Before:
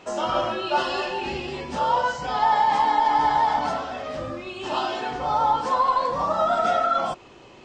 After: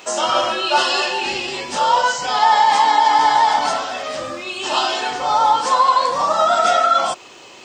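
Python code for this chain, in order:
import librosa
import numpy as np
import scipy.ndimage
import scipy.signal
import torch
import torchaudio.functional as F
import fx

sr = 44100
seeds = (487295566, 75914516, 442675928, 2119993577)

y = fx.riaa(x, sr, side='recording')
y = y * librosa.db_to_amplitude(6.5)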